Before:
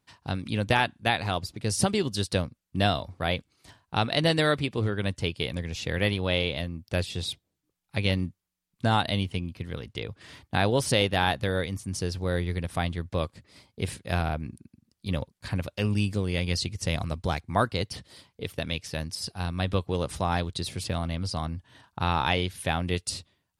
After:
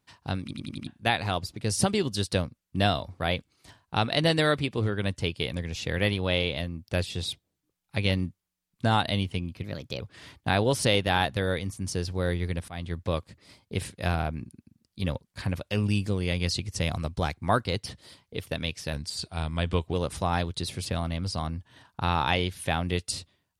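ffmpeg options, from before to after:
ffmpeg -i in.wav -filter_complex "[0:a]asplit=11[link_01][link_02][link_03][link_04][link_05][link_06][link_07][link_08][link_09][link_10][link_11];[link_01]atrim=end=0.512[link_12];[link_02]atrim=start=0.418:end=0.512[link_13];[link_03]atrim=start=0.418:end=0.512[link_14];[link_04]atrim=start=0.418:end=0.512[link_15];[link_05]atrim=start=0.418:end=0.512[link_16];[link_06]atrim=start=0.868:end=9.634[link_17];[link_07]atrim=start=9.63:end=10.07,asetpts=PTS-STARTPTS,asetrate=52038,aresample=44100,atrim=end_sample=16444,asetpts=PTS-STARTPTS[link_18];[link_08]atrim=start=10.066:end=12.75,asetpts=PTS-STARTPTS,afade=type=out:start_time=2.68:duration=0.004:curve=hsin:silence=0.0668344[link_19];[link_09]atrim=start=12.75:end=19.004,asetpts=PTS-STARTPTS,afade=type=in:duration=0.25:silence=0.0668344[link_20];[link_10]atrim=start=19:end=19.92,asetpts=PTS-STARTPTS,asetrate=40572,aresample=44100[link_21];[link_11]atrim=start=19.916[link_22];[link_12][link_13]acrossfade=duration=0.004:curve1=hsin:curve2=hsin[link_23];[link_23][link_14]acrossfade=duration=0.004:curve1=hsin:curve2=hsin[link_24];[link_24][link_15]acrossfade=duration=0.004:curve1=hsin:curve2=hsin[link_25];[link_25][link_16]acrossfade=duration=0.004:curve1=hsin:curve2=hsin[link_26];[link_26][link_17]acrossfade=duration=0.004:curve1=hsin:curve2=hsin[link_27];[link_27][link_18]acrossfade=duration=0.004:curve1=hsin:curve2=hsin[link_28];[link_19][link_20]concat=n=2:v=0:a=1[link_29];[link_28][link_29]acrossfade=duration=0.004:curve1=hsin:curve2=hsin[link_30];[link_30][link_21]acrossfade=duration=0.004:curve1=hsin:curve2=hsin[link_31];[link_31][link_22]acrossfade=duration=0.004:curve1=hsin:curve2=hsin" out.wav

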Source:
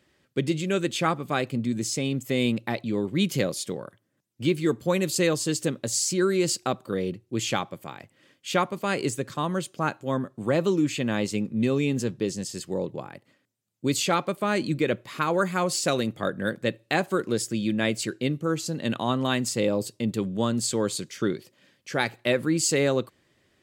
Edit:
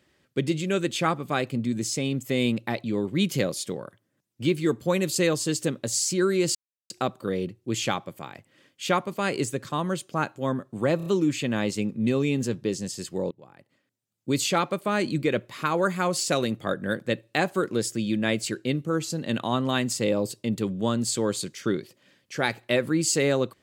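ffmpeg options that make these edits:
ffmpeg -i in.wav -filter_complex "[0:a]asplit=6[link_01][link_02][link_03][link_04][link_05][link_06];[link_01]atrim=end=6.55,asetpts=PTS-STARTPTS,afade=type=out:start_time=6.546:duration=0.004:curve=hsin,apad=pad_dur=0.35[link_07];[link_02]atrim=start=6.55:end=10.652,asetpts=PTS-STARTPTS,afade=type=in:duration=0.004:curve=hsin[link_08];[link_03]atrim=start=10.618:end=10.652[link_09];[link_04]atrim=start=10.618:end=10.652[link_10];[link_05]atrim=start=10.618:end=12.87,asetpts=PTS-STARTPTS,afade=type=out:start_time=2.248:duration=0.004:curve=hsin:silence=0.0668344[link_11];[link_06]atrim=start=12.87,asetpts=PTS-STARTPTS,afade=type=in:duration=0.99:silence=0.0668344[link_12];[link_07][link_08]concat=n=2:v=0:a=1[link_13];[link_13][link_09]acrossfade=duration=0.004:curve1=hsin:curve2=hsin[link_14];[link_14][link_10]acrossfade=duration=0.004:curve1=hsin:curve2=hsin[link_15];[link_11][link_12]concat=n=2:v=0:a=1[link_16];[link_15][link_16]acrossfade=duration=0.004:curve1=hsin:curve2=hsin" out.wav

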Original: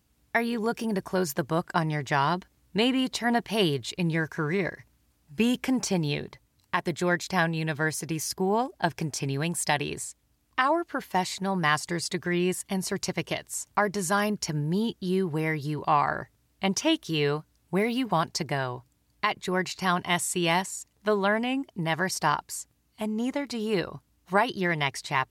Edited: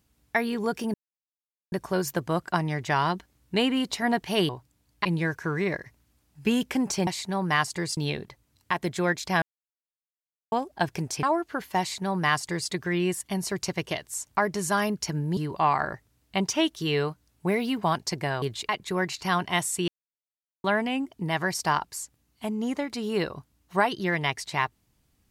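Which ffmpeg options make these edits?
ffmpeg -i in.wav -filter_complex "[0:a]asplit=14[link_01][link_02][link_03][link_04][link_05][link_06][link_07][link_08][link_09][link_10][link_11][link_12][link_13][link_14];[link_01]atrim=end=0.94,asetpts=PTS-STARTPTS,afade=type=out:start_time=0.936:duration=0.004:curve=hsin,apad=pad_dur=0.78[link_15];[link_02]atrim=start=0.94:end=3.712,asetpts=PTS-STARTPTS,afade=type=in:duration=0.004:curve=hsin[link_16];[link_03]atrim=start=18.698:end=19.262[link_17];[link_04]atrim=start=3.978:end=6.002[link_18];[link_05]atrim=start=11.198:end=12.102[link_19];[link_06]atrim=start=5.998:end=7.45,asetpts=PTS-STARTPTS,afade=type=out:start_time=1.448:duration=0.004:curve=hsin[link_20];[link_07]atrim=start=7.45:end=8.55,asetpts=PTS-STARTPTS,volume=0[link_21];[link_08]atrim=start=8.55:end=9.262,asetpts=PTS-STARTPTS,afade=type=in:duration=0.004:curve=hsin[link_22];[link_09]atrim=start=10.628:end=14.772[link_23];[link_10]atrim=start=15.648:end=18.702[link_24];[link_11]atrim=start=3.708:end=3.982[link_25];[link_12]atrim=start=19.258:end=20.45,asetpts=PTS-STARTPTS,afade=type=out:start_time=1.188:duration=0.004:curve=hsin[link_26];[link_13]atrim=start=20.45:end=21.21,asetpts=PTS-STARTPTS,volume=0[link_27];[link_14]atrim=start=21.21,asetpts=PTS-STARTPTS,afade=type=in:duration=0.004:curve=hsin[link_28];[link_15][link_16]concat=n=2:v=0:a=1[link_29];[link_29][link_17]acrossfade=duration=0.004:curve1=hsin:curve2=hsin[link_30];[link_30][link_18]acrossfade=duration=0.004:curve1=hsin:curve2=hsin[link_31];[link_31][link_19]acrossfade=duration=0.004:curve1=hsin:curve2=hsin[link_32];[link_20][link_21][link_22]concat=n=3:v=0:a=1[link_33];[link_32][link_33]acrossfade=duration=0.004:curve1=hsin:curve2=hsin[link_34];[link_34][link_23]acrossfade=duration=0.004:curve1=hsin:curve2=hsin[link_35];[link_35][link_24]acrossfade=duration=0.004:curve1=hsin:curve2=hsin[link_36];[link_36][link_25]acrossfade=duration=0.004:curve1=hsin:curve2=hsin[link_37];[link_26][link_27][link_28]concat=n=3:v=0:a=1[link_38];[link_37][link_38]acrossfade=duration=0.004:curve1=hsin:curve2=hsin" out.wav

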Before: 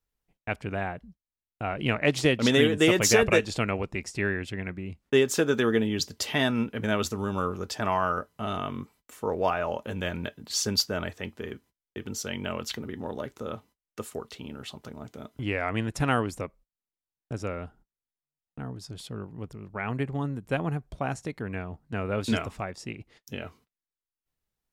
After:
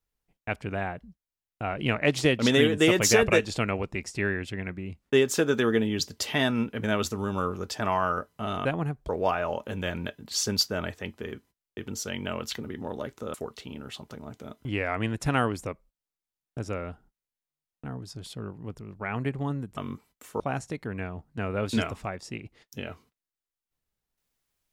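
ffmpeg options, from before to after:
ffmpeg -i in.wav -filter_complex "[0:a]asplit=6[link_01][link_02][link_03][link_04][link_05][link_06];[link_01]atrim=end=8.652[link_07];[link_02]atrim=start=20.508:end=20.952[link_08];[link_03]atrim=start=9.278:end=13.532[link_09];[link_04]atrim=start=14.078:end=20.512[link_10];[link_05]atrim=start=8.648:end=9.282[link_11];[link_06]atrim=start=20.948[link_12];[link_07][link_08]acrossfade=duration=0.004:curve1=hsin:curve2=hsin[link_13];[link_13][link_09]acrossfade=duration=0.004:curve1=hsin:curve2=hsin[link_14];[link_14][link_10]acrossfade=duration=0.004:curve1=hsin:curve2=hsin[link_15];[link_15][link_11]acrossfade=duration=0.004:curve1=hsin:curve2=hsin[link_16];[link_16][link_12]acrossfade=duration=0.004:curve1=hsin:curve2=hsin" out.wav

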